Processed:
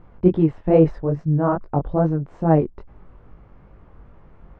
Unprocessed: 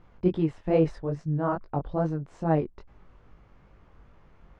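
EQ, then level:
low-pass filter 1,100 Hz 6 dB per octave
+8.5 dB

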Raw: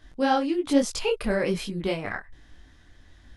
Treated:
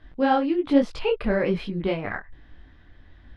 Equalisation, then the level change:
high-frequency loss of the air 390 metres
high-shelf EQ 3,700 Hz +6 dB
+3.0 dB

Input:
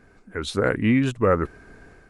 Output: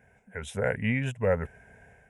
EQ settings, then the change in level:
high-pass filter 71 Hz
phaser with its sweep stopped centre 1,200 Hz, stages 6
−2.0 dB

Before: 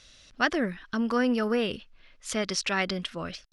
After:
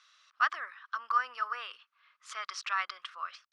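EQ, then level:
four-pole ladder high-pass 1,100 Hz, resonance 75%
high-frequency loss of the air 62 metres
+3.5 dB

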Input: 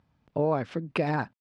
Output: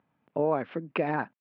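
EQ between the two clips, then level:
high-pass filter 210 Hz 12 dB per octave
low-pass filter 2,900 Hz 24 dB per octave
0.0 dB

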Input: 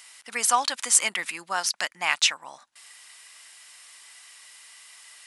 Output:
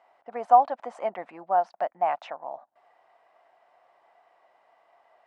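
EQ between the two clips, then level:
low-pass with resonance 690 Hz, resonance Q 5.1
low-shelf EQ 68 Hz −9 dB
low-shelf EQ 190 Hz −3 dB
0.0 dB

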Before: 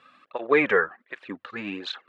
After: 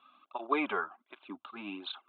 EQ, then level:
elliptic low-pass filter 3,600 Hz, stop band 40 dB
low-shelf EQ 450 Hz −8.5 dB
phaser with its sweep stopped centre 490 Hz, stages 6
0.0 dB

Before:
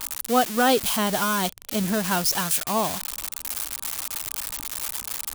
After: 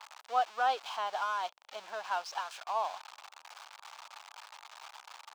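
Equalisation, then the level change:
dynamic equaliser 1,900 Hz, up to −6 dB, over −50 dBFS, Q 5.4
four-pole ladder high-pass 680 Hz, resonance 45%
high-frequency loss of the air 170 metres
−1.5 dB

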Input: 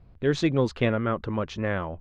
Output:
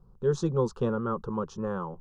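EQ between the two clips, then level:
flat-topped bell 2,700 Hz −9.5 dB
phaser with its sweep stopped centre 430 Hz, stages 8
0.0 dB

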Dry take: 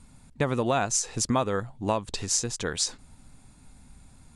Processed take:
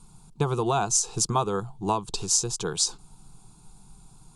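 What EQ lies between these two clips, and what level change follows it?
phaser with its sweep stopped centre 380 Hz, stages 8
+4.0 dB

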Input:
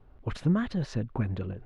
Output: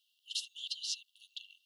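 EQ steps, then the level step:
linear-phase brick-wall high-pass 2,700 Hz
+11.5 dB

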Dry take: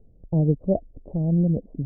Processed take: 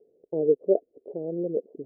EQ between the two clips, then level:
four-pole ladder band-pass 470 Hz, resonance 65%
parametric band 400 Hz +4.5 dB 0.98 octaves
+6.5 dB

